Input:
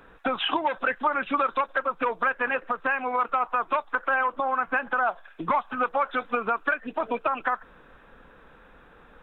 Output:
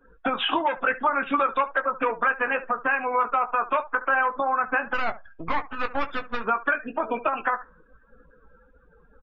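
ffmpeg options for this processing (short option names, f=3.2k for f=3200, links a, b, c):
-filter_complex "[0:a]asplit=3[a][b][c];[a]afade=t=out:st=4.93:d=0.02[d];[b]aeval=exprs='max(val(0),0)':c=same,afade=t=in:st=4.93:d=0.02,afade=t=out:st=6.43:d=0.02[e];[c]afade=t=in:st=6.43:d=0.02[f];[d][e][f]amix=inputs=3:normalize=0,aecho=1:1:18|72:0.398|0.158,afftdn=nr=27:nf=-45,volume=1dB"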